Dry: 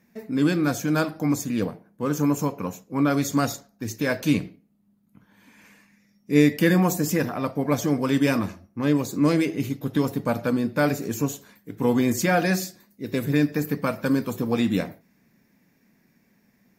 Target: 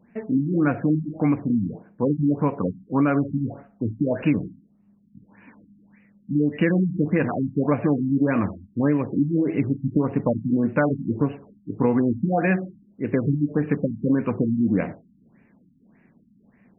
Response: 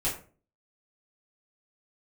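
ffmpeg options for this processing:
-af "acompressor=threshold=-22dB:ratio=6,afftfilt=real='re*lt(b*sr/1024,280*pow(3000/280,0.5+0.5*sin(2*PI*1.7*pts/sr)))':imag='im*lt(b*sr/1024,280*pow(3000/280,0.5+0.5*sin(2*PI*1.7*pts/sr)))':win_size=1024:overlap=0.75,volume=6dB"

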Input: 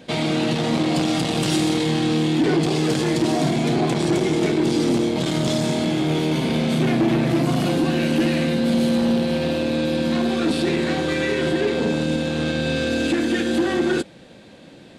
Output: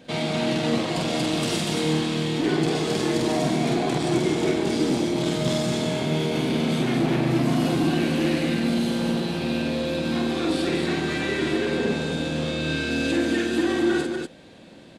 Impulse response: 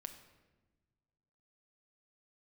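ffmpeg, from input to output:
-af "aecho=1:1:46.65|142.9|242:0.708|0.282|0.631,volume=-5dB"

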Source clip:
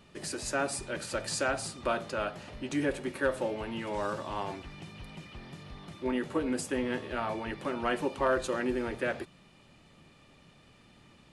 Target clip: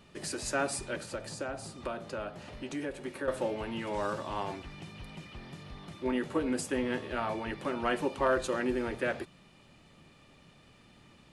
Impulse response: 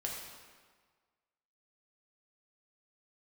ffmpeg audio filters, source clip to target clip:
-filter_complex "[0:a]asettb=1/sr,asplit=3[link_01][link_02][link_03];[link_01]atrim=end=0.954[link_04];[link_02]atrim=start=0.95:end=3.28,asetpts=PTS-STARTPTS,afade=type=in:duration=0.004:curve=qsin,afade=type=out:start_time=2.326:duration=0.004:curve=qsin,acrossover=split=340|980[link_05][link_06][link_07];[link_05]acompressor=threshold=-43dB:ratio=4[link_08];[link_06]acompressor=threshold=-38dB:ratio=4[link_09];[link_07]acompressor=threshold=-45dB:ratio=4[link_10];[link_08][link_09][link_10]amix=inputs=3:normalize=0[link_11];[link_03]atrim=start=3.276[link_12];[link_04][link_11]acrossfade=duration=0.004:curve1=hsin:curve2=qsin[link_13];[link_13][link_12]acrossfade=duration=0.004:curve1=qsin:curve2=hsin"

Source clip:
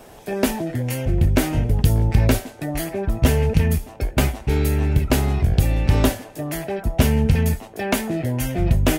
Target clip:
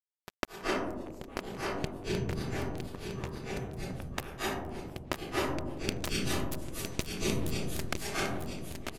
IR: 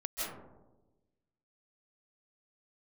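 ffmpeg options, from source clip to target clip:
-filter_complex "[0:a]asettb=1/sr,asplit=3[link_01][link_02][link_03];[link_01]atrim=end=5.724[link_04];[link_02]atrim=start=5.72:end=7.87,asetpts=PTS-STARTPTS,afade=type=in:duration=0.004:curve=qsin,afade=type=out:start_time=2.146:duration=0.004:curve=qsin,highshelf=frequency=2900:gain=11[link_05];[link_03]atrim=start=7.866[link_06];[link_04][link_05]acrossfade=duration=0.004:curve1=hsin:curve2=qsin[link_07];[link_07][link_06]acrossfade=duration=0.004:curve1=qsin:curve2=hsin,acompressor=threshold=-30dB:ratio=4,flanger=delay=2:depth=3.9:regen=66:speed=1.4:shape=sinusoidal,acrusher=bits=3:mix=0:aa=0.5,aecho=1:1:959:0.447[link_08];[1:a]atrim=start_sample=2205,asetrate=26901,aresample=44100[link_09];[link_08][link_09]afir=irnorm=-1:irlink=0,volume=7dB"

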